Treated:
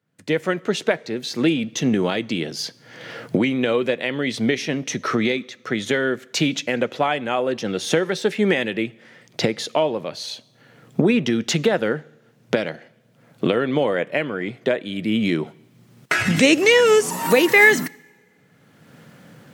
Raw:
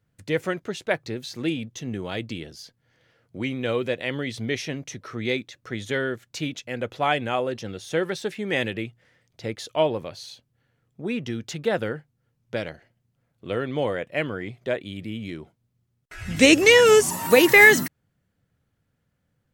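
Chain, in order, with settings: recorder AGC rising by 24 dB/s; high-pass 150 Hz 24 dB/octave; treble shelf 7.6 kHz -6 dB; on a send: reverberation, pre-delay 3 ms, DRR 21.5 dB

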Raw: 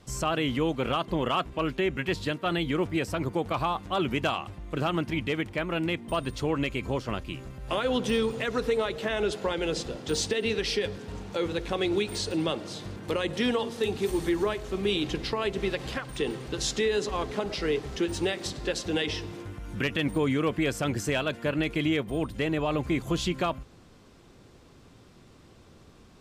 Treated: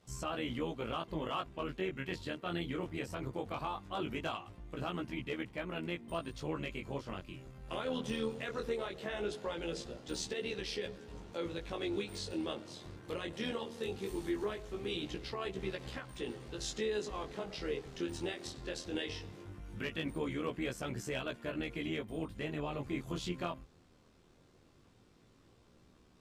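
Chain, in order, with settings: AM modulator 78 Hz, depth 45%; chorus 0.19 Hz, delay 16 ms, depth 7.1 ms; trim -5 dB

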